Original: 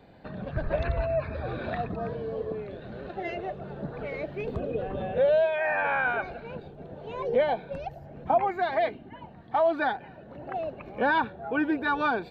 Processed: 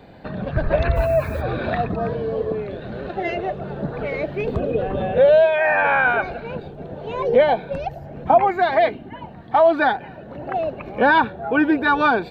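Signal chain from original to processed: 0.95–1.40 s: added noise blue -60 dBFS; trim +9 dB

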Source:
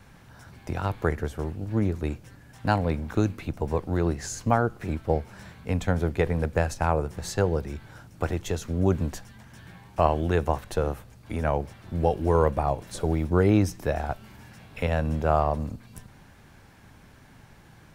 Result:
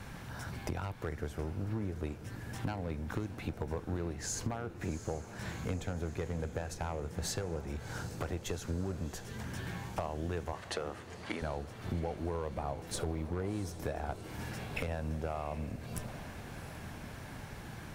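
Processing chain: in parallel at -2.5 dB: peak limiter -16.5 dBFS, peak gain reduction 10.5 dB; on the sum: compression 10:1, threshold -34 dBFS, peak gain reduction 21.5 dB; one-sided clip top -30.5 dBFS; 10.53–11.42 s: cabinet simulation 250–9500 Hz, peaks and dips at 1.2 kHz +5 dB, 1.9 kHz +9 dB, 3 kHz +6 dB, 4.5 kHz +5 dB; on a send: echo that smears into a reverb 724 ms, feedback 65%, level -13 dB; on the sum: trim +1 dB

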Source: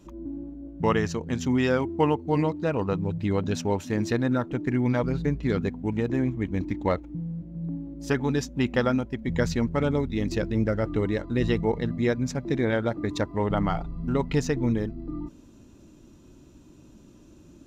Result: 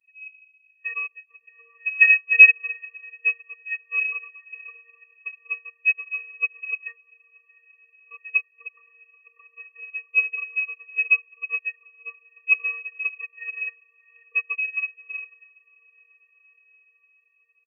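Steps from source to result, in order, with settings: comb 6.6 ms, depth 82%; pre-echo 37 ms -23.5 dB; vocoder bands 16, square 348 Hz; added noise violet -61 dBFS; on a send: echo that smears into a reverb 751 ms, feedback 66%, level -9.5 dB; on the sum: frequency inversion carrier 2.9 kHz; upward expansion 2.5:1, over -32 dBFS; trim +7.5 dB

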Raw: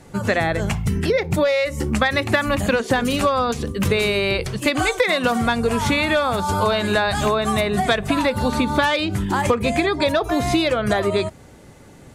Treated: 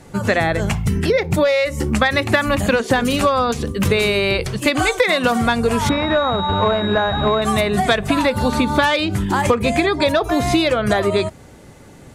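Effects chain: 5.89–7.42 s: class-D stage that switches slowly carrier 3.8 kHz; trim +2.5 dB

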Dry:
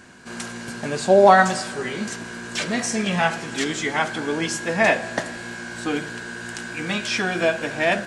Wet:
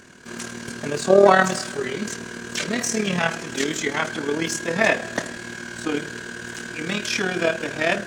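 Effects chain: harmony voices +12 st -18 dB; AM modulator 38 Hz, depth 45%; graphic EQ with 31 bands 400 Hz +4 dB, 800 Hz -6 dB, 6.3 kHz +4 dB; trim +2 dB

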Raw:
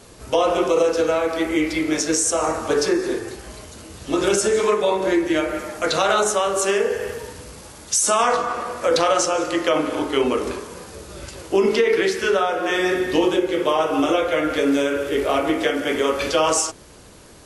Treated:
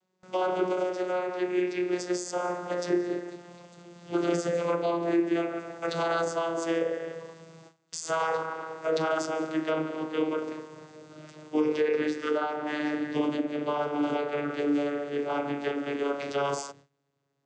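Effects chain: vocoder on a note that slides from F#3, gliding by -5 st; bass shelf 460 Hz -8.5 dB; gate with hold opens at -39 dBFS; trim -3.5 dB

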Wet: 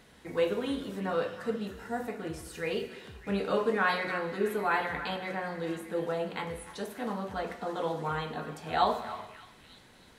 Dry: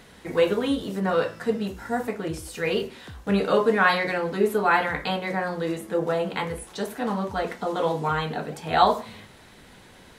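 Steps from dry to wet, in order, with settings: repeats whose band climbs or falls 303 ms, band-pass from 1.4 kHz, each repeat 0.7 oct, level -11 dB; gated-style reverb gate 480 ms falling, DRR 9.5 dB; trim -8 dB

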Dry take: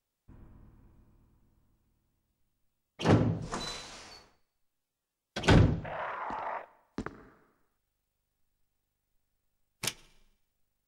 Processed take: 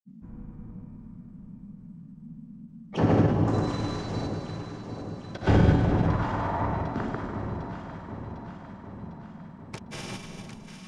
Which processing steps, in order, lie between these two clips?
low-pass 5.1 kHz 12 dB/octave; peaking EQ 3.4 kHz -9.5 dB 1.9 oct; Schroeder reverb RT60 2.2 s, combs from 31 ms, DRR -1.5 dB; in parallel at +3 dB: compression, threshold -36 dBFS, peak gain reduction 20 dB; on the sum: band noise 150–240 Hz -45 dBFS; granulator, pitch spread up and down by 0 st; on a send: echo whose repeats swap between lows and highs 376 ms, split 1.1 kHz, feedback 77%, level -7.5 dB; on the sum: endings held to a fixed fall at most 210 dB/s

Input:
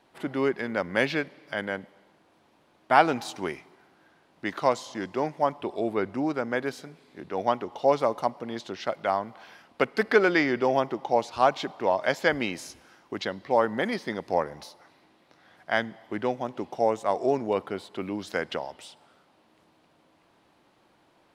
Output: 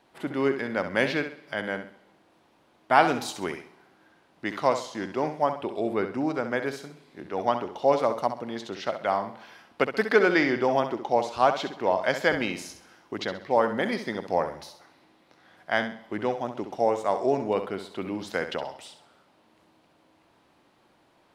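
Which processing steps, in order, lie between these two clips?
3.02–3.46 s: treble shelf 5 kHz +5.5 dB; flutter echo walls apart 11.3 m, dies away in 0.42 s

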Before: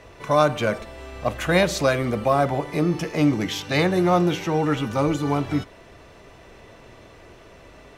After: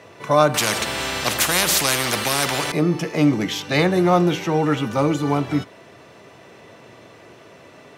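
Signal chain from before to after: high-pass 110 Hz 24 dB/octave; 0.54–2.72 s: spectrum-flattening compressor 4:1; trim +2.5 dB

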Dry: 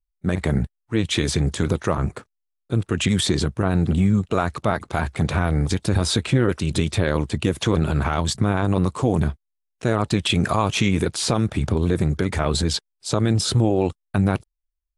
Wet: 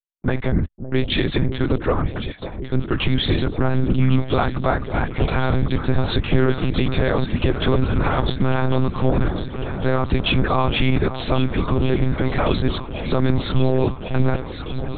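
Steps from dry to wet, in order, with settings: gate -35 dBFS, range -34 dB; echo whose repeats swap between lows and highs 551 ms, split 860 Hz, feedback 86%, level -10 dB; monotone LPC vocoder at 8 kHz 130 Hz; trim +2 dB

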